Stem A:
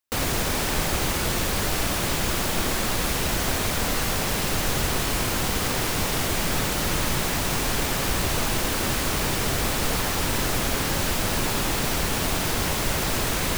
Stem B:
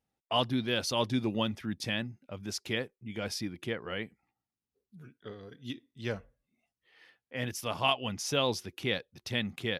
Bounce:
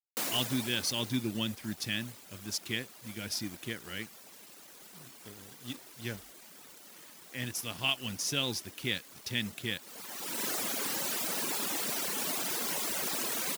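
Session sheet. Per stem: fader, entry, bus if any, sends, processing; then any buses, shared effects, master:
-7.0 dB, 0.05 s, no send, high-pass 200 Hz 24 dB/octave; reverb removal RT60 1.7 s; auto duck -15 dB, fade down 1.30 s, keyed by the second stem
-1.5 dB, 0.00 s, no send, high-order bell 730 Hz -9 dB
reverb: none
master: treble shelf 5.1 kHz +8.5 dB; crossover distortion -52 dBFS

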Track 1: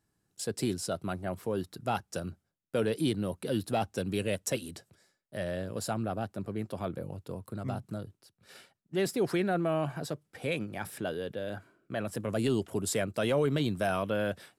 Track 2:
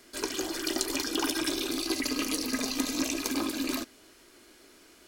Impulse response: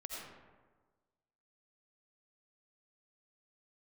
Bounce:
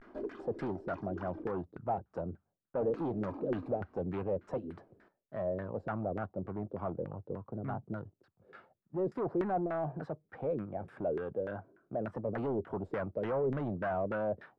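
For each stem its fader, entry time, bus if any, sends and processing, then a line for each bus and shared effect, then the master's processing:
-2.0 dB, 0.00 s, no send, none
-0.5 dB, 0.00 s, muted 1.52–2.80 s, no send, peaking EQ 200 Hz +13 dB 0.3 oct; compression, threshold -33 dBFS, peak gain reduction 10.5 dB; auto duck -9 dB, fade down 0.20 s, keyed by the first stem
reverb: none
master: vibrato 0.43 Hz 71 cents; saturation -31.5 dBFS, distortion -10 dB; LFO low-pass saw down 3.4 Hz 370–1700 Hz

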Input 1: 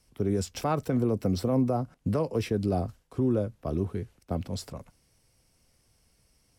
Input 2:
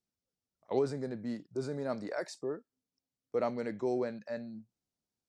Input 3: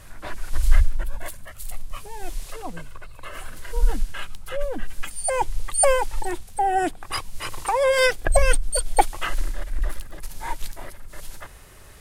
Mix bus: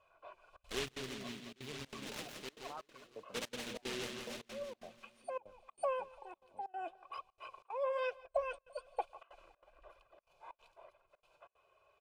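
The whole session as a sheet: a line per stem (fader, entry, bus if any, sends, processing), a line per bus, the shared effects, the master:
-11.0 dB, 2.05 s, no send, no echo send, LFO band-pass saw up 1.8 Hz 580–4900 Hz
-5.0 dB, 0.00 s, no send, echo send -5.5 dB, delay time shaken by noise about 2.8 kHz, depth 0.38 ms
-4.0 dB, 0.00 s, no send, echo send -22 dB, vowel filter a; comb 2 ms, depth 74%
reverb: none
echo: feedback delay 170 ms, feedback 56%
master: treble shelf 6.2 kHz -6.5 dB; flange 1.1 Hz, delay 0.7 ms, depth 6.2 ms, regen +69%; trance gate "xxxxxxx.xxx." 187 bpm -24 dB

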